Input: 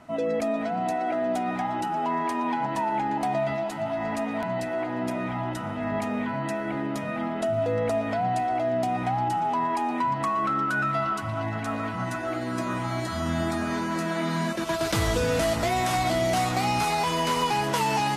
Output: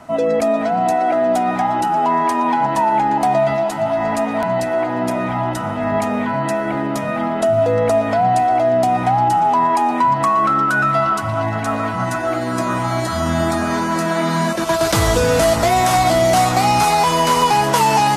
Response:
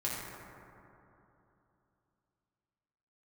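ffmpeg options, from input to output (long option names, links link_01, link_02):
-filter_complex "[0:a]bass=frequency=250:gain=3,treble=frequency=4000:gain=6,acrossover=split=510|1400[link_01][link_02][link_03];[link_02]acontrast=78[link_04];[link_01][link_04][link_03]amix=inputs=3:normalize=0,volume=5.5dB"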